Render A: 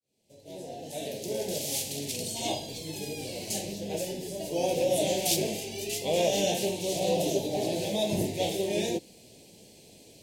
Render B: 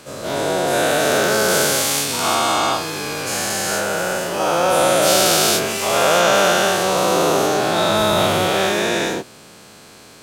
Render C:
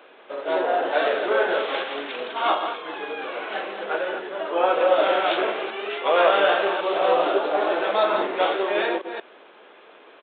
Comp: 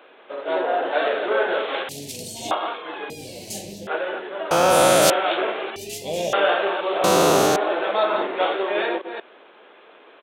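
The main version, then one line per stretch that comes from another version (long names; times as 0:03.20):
C
0:01.89–0:02.51: punch in from A
0:03.10–0:03.87: punch in from A
0:04.51–0:05.10: punch in from B
0:05.76–0:06.33: punch in from A
0:07.04–0:07.56: punch in from B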